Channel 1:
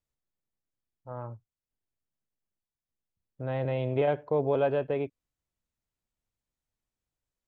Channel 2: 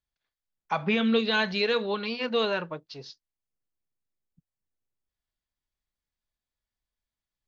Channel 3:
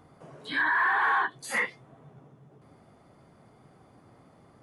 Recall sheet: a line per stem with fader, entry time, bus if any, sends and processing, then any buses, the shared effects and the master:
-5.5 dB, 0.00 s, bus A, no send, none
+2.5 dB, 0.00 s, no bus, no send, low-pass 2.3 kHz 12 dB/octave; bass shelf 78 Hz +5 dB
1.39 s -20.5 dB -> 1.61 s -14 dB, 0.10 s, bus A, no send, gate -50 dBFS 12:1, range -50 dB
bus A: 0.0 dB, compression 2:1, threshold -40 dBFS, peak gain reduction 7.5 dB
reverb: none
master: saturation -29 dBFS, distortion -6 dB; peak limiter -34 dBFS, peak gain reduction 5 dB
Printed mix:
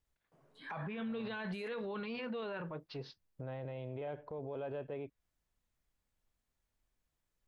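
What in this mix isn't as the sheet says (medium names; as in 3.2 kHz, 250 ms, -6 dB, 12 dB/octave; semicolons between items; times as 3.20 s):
stem 1 -5.5 dB -> +1.5 dB; master: missing saturation -29 dBFS, distortion -6 dB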